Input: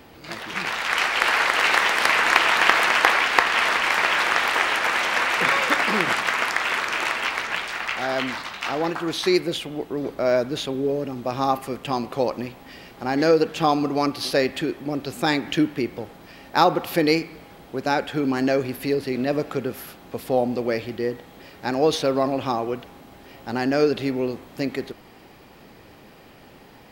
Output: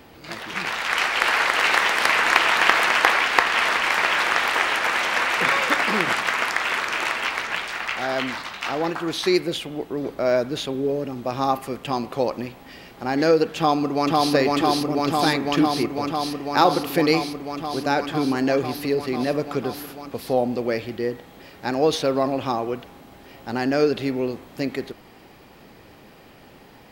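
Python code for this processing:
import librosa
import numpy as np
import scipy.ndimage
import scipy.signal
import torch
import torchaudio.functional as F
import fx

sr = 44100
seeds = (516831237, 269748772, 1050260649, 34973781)

y = fx.echo_throw(x, sr, start_s=13.57, length_s=0.76, ms=500, feedback_pct=85, wet_db=-0.5)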